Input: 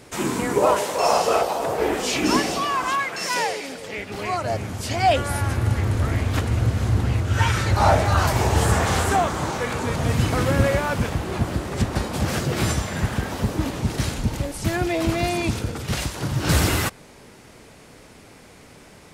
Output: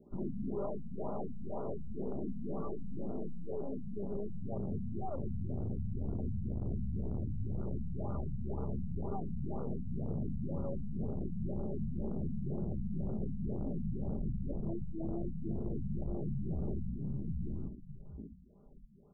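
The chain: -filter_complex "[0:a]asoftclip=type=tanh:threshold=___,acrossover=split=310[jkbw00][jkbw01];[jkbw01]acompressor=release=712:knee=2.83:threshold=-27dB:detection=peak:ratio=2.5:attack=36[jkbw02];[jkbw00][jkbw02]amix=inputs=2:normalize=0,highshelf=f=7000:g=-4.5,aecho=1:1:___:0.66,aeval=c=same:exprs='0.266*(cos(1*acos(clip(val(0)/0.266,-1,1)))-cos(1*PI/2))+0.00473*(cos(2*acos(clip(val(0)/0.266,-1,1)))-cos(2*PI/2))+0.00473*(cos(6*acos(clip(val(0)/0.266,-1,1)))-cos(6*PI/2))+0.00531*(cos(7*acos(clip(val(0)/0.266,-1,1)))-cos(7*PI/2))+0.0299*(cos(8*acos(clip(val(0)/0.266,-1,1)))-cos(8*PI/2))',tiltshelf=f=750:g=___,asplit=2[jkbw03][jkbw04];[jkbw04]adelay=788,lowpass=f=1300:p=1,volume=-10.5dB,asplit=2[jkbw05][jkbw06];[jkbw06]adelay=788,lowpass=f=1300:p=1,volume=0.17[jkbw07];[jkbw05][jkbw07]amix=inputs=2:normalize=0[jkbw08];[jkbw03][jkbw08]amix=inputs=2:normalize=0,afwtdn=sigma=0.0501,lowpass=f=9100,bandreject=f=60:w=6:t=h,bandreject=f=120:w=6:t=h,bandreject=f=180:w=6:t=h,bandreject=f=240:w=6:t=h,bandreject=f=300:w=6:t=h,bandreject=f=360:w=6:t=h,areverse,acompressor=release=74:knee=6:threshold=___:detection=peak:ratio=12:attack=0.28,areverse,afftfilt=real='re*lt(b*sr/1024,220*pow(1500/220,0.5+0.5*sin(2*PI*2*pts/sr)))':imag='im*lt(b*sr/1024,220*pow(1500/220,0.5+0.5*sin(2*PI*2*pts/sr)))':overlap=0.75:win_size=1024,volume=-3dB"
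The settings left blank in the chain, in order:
-21dB, 5, 9, -27dB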